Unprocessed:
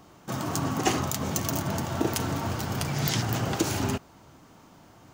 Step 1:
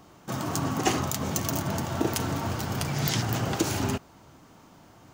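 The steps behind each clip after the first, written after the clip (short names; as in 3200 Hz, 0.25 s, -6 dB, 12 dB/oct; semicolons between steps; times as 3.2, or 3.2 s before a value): nothing audible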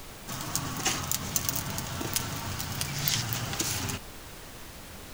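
passive tone stack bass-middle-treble 5-5-5; added noise pink -53 dBFS; gain +9 dB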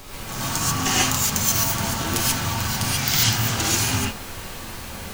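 non-linear reverb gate 0.16 s rising, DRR -8 dB; gain +1.5 dB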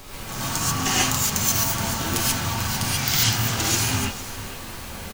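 echo 0.456 s -15.5 dB; gain -1 dB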